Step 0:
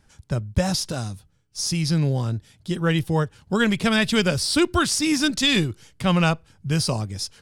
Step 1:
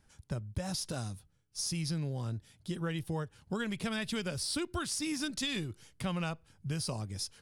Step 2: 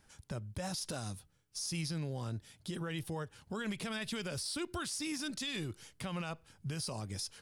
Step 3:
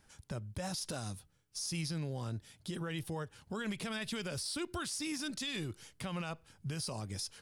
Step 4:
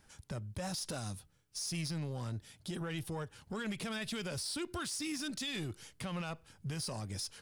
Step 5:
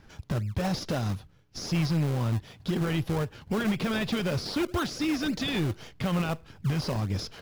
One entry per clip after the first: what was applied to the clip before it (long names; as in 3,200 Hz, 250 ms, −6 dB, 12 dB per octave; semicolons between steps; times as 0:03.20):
parametric band 10,000 Hz +6.5 dB 0.21 octaves; downward compressor, threshold −24 dBFS, peak gain reduction 9.5 dB; level −8 dB
low-shelf EQ 240 Hz −6.5 dB; brickwall limiter −34 dBFS, peak gain reduction 10.5 dB; level +4 dB
no processing that can be heard
soft clipping −33 dBFS, distortion −18 dB; level +1.5 dB
moving average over 5 samples; in parallel at −4 dB: sample-and-hold swept by an LFO 34×, swing 100% 3.9 Hz; on the sum: level +8.5 dB